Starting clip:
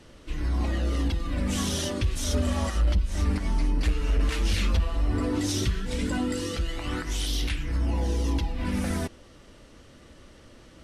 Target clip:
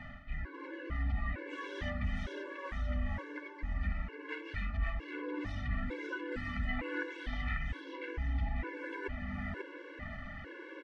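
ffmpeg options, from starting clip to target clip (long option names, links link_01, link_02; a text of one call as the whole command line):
ffmpeg -i in.wav -af "areverse,acompressor=threshold=-38dB:ratio=12,areverse,lowpass=frequency=1900:width_type=q:width=3.6,aecho=1:1:541|1082|1623|2164:0.631|0.196|0.0606|0.0188,afftfilt=real='re*gt(sin(2*PI*1.1*pts/sr)*(1-2*mod(floor(b*sr/1024/290),2)),0)':imag='im*gt(sin(2*PI*1.1*pts/sr)*(1-2*mod(floor(b*sr/1024/290),2)),0)':win_size=1024:overlap=0.75,volume=5dB" out.wav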